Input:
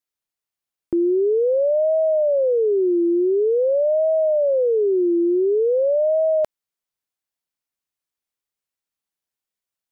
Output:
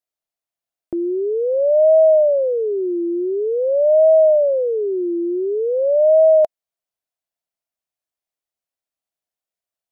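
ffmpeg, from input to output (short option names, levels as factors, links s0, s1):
-af "equalizer=f=660:w=3.4:g=11.5,volume=0.668"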